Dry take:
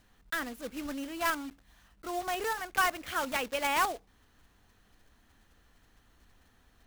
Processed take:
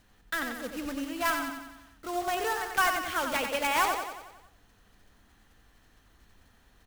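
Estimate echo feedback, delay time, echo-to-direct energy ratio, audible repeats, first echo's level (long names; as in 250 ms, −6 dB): 55%, 91 ms, −4.5 dB, 6, −6.0 dB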